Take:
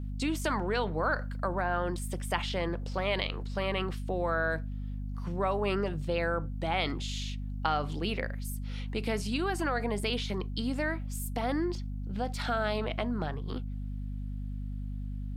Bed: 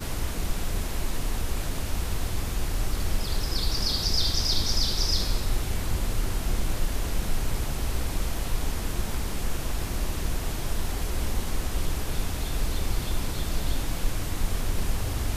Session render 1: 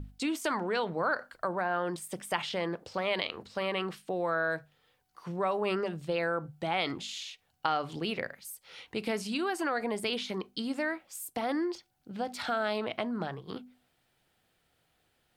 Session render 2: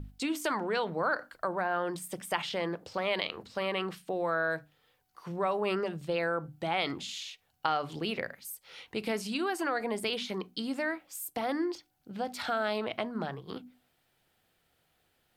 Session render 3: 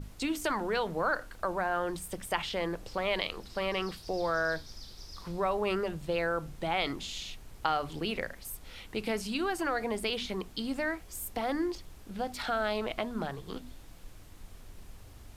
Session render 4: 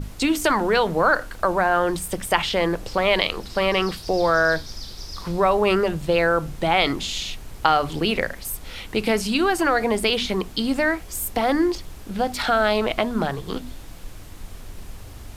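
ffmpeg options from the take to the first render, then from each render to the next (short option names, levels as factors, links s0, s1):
-af "bandreject=f=50:t=h:w=6,bandreject=f=100:t=h:w=6,bandreject=f=150:t=h:w=6,bandreject=f=200:t=h:w=6,bandreject=f=250:t=h:w=6"
-af "equalizer=f=13000:w=5.2:g=7.5,bandreject=f=60:t=h:w=6,bandreject=f=120:t=h:w=6,bandreject=f=180:t=h:w=6,bandreject=f=240:t=h:w=6,bandreject=f=300:t=h:w=6"
-filter_complex "[1:a]volume=0.075[s0];[0:a][s0]amix=inputs=2:normalize=0"
-af "volume=3.76"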